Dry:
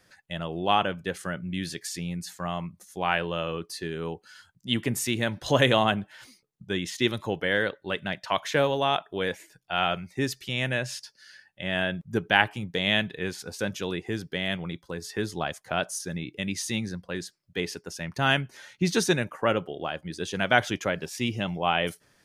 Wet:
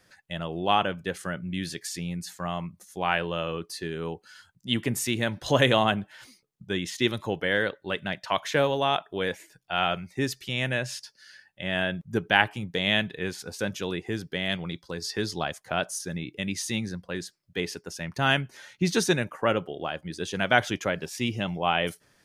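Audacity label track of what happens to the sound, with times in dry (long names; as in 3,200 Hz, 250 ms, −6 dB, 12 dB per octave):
14.490000	15.460000	parametric band 4,800 Hz +9.5 dB 0.74 octaves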